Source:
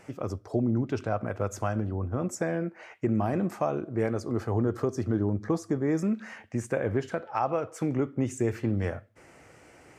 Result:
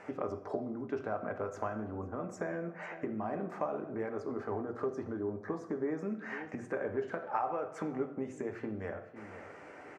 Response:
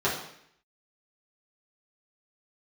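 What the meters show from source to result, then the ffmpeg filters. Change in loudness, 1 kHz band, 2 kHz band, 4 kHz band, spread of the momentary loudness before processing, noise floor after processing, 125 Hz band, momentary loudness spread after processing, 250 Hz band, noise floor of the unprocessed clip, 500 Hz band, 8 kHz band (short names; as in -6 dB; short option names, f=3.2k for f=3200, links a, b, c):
-8.0 dB, -4.5 dB, -4.0 dB, under -10 dB, 6 LU, -51 dBFS, -16.0 dB, 5 LU, -10.0 dB, -55 dBFS, -6.0 dB, under -15 dB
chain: -filter_complex "[0:a]aecho=1:1:501:0.075,acompressor=threshold=-36dB:ratio=6,lowpass=1.9k,aemphasis=mode=production:type=bsi,asplit=2[a][b];[1:a]atrim=start_sample=2205,highshelf=f=8.1k:g=9[c];[b][c]afir=irnorm=-1:irlink=0,volume=-16.5dB[d];[a][d]amix=inputs=2:normalize=0,volume=3.5dB"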